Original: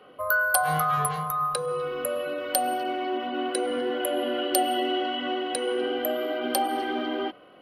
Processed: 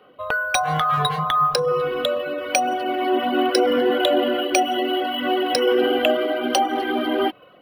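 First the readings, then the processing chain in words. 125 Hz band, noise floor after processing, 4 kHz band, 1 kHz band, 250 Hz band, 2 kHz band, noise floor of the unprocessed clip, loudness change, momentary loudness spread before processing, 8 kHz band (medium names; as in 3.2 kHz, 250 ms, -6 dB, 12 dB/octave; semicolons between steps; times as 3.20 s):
+5.5 dB, -50 dBFS, +7.5 dB, +5.5 dB, +7.5 dB, +3.5 dB, -51 dBFS, +6.0 dB, 6 LU, +1.0 dB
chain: reverb removal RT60 0.52 s; level rider gain up to 13 dB; decimation joined by straight lines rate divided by 3×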